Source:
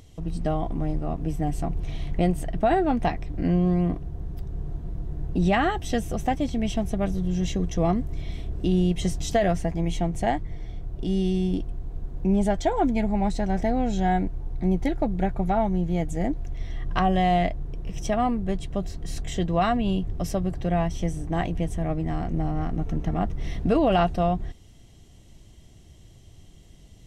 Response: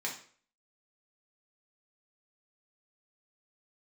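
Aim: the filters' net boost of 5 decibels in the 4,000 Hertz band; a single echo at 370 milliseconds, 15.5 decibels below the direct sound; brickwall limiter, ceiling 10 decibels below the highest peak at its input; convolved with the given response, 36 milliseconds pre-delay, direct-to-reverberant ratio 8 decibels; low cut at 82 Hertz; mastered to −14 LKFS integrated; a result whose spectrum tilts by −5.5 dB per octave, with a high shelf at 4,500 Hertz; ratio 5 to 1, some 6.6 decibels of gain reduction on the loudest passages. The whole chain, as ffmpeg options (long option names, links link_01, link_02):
-filter_complex "[0:a]highpass=82,equalizer=frequency=4000:width_type=o:gain=3,highshelf=frequency=4500:gain=8,acompressor=threshold=-24dB:ratio=5,alimiter=limit=-21.5dB:level=0:latency=1,aecho=1:1:370:0.168,asplit=2[link_01][link_02];[1:a]atrim=start_sample=2205,adelay=36[link_03];[link_02][link_03]afir=irnorm=-1:irlink=0,volume=-11.5dB[link_04];[link_01][link_04]amix=inputs=2:normalize=0,volume=17dB"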